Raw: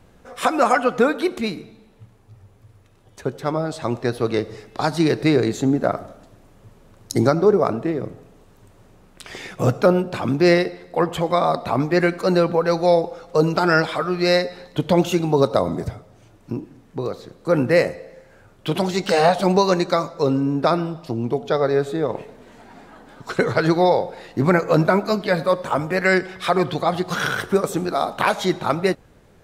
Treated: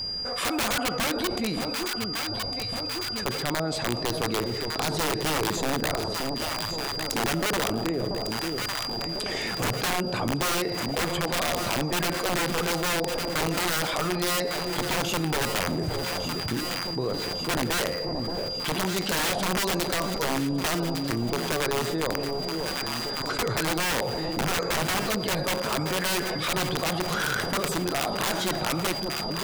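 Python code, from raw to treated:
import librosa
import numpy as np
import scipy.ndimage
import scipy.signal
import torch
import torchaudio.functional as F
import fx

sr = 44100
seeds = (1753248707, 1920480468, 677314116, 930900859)

p1 = (np.mod(10.0 ** (13.0 / 20.0) * x + 1.0, 2.0) - 1.0) / 10.0 ** (13.0 / 20.0)
p2 = p1 + 10.0 ** (-37.0 / 20.0) * np.sin(2.0 * np.pi * 4800.0 * np.arange(len(p1)) / sr)
p3 = p2 + fx.echo_alternate(p2, sr, ms=577, hz=810.0, feedback_pct=67, wet_db=-10.5, dry=0)
p4 = fx.env_flatten(p3, sr, amount_pct=70)
y = F.gain(torch.from_numpy(p4), -9.0).numpy()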